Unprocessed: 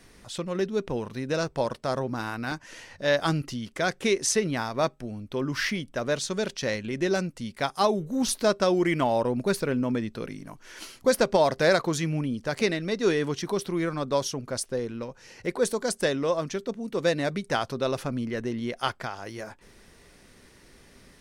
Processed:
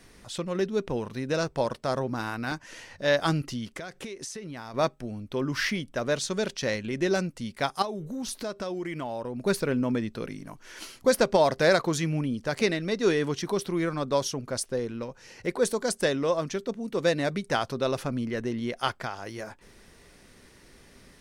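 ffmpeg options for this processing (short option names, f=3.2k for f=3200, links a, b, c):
-filter_complex "[0:a]asettb=1/sr,asplit=3[a][b][c];[a]atrim=end=3.774[d];[b]atrim=start=3.77:end=4.74,asetpts=PTS-STARTPTS,afade=t=in:d=0.004:c=qsin,afade=t=out:st=0.966:d=0.004:c=qsin,acompressor=threshold=-34dB:ratio=16:attack=3.2:release=140:knee=1:detection=peak[e];[c]atrim=start=4.736[f];[d][e]acrossfade=d=0.004:c1=hsin:c2=qsin[g];[g][f]acrossfade=d=0.004:c1=qsin:c2=hsin,asettb=1/sr,asplit=3[h][i][j];[h]atrim=end=7.824[k];[i]atrim=start=7.82:end=9.44,asetpts=PTS-STARTPTS,afade=t=in:d=0.004:c=qsin,afade=t=out:st=1.616:d=0.004:c=qsin,acompressor=threshold=-33dB:ratio=3:attack=3.2:release=140:knee=1:detection=peak[l];[j]atrim=start=9.436[m];[k][l]acrossfade=d=0.004:c1=hsin:c2=qsin[n];[n][m]acrossfade=d=0.004:c1=qsin:c2=hsin"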